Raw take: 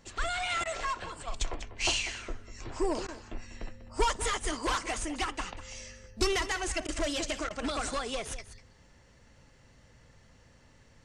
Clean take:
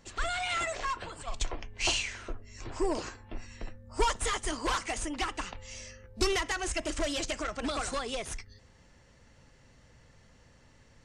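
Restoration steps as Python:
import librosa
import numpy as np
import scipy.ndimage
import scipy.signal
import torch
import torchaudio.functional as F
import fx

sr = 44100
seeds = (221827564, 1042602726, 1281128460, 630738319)

y = fx.fix_interpolate(x, sr, at_s=(0.64, 3.07, 6.87, 7.49), length_ms=13.0)
y = fx.fix_echo_inverse(y, sr, delay_ms=195, level_db=-13.5)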